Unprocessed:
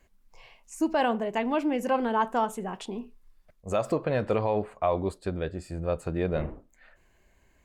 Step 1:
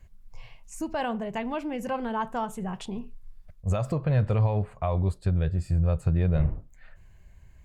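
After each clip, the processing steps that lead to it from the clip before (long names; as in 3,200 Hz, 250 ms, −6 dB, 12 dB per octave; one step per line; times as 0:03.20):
in parallel at 0 dB: downward compressor, threshold −33 dBFS, peak gain reduction 12 dB
on the sum: low shelf with overshoot 190 Hz +13 dB, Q 1.5
level −6 dB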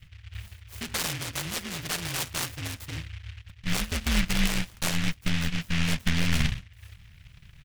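ring modulation 84 Hz
comb filter 1.4 ms, depth 53%
short delay modulated by noise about 2,300 Hz, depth 0.5 ms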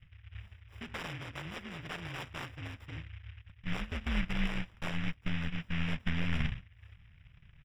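Savitzky-Golay smoothing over 25 samples
level −7 dB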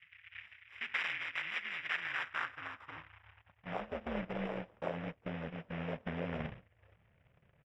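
band-pass filter sweep 2,100 Hz → 540 Hz, 0:01.83–0:04.11
level +10.5 dB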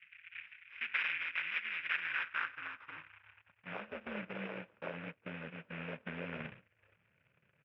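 loudspeaker in its box 130–4,700 Hz, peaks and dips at 730 Hz −6 dB, 1,500 Hz +7 dB, 2,500 Hz +9 dB
level −4 dB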